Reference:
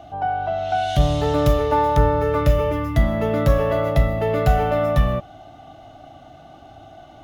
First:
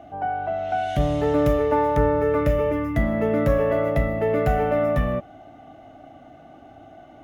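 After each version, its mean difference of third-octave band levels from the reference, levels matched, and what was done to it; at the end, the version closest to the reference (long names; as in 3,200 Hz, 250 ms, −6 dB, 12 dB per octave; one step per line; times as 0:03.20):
3.0 dB: octave-band graphic EQ 250/500/2,000/4,000 Hz +8/+6/+8/−7 dB
level −7 dB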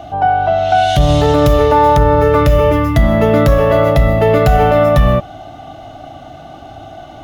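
1.0 dB: boost into a limiter +11.5 dB
level −1 dB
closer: second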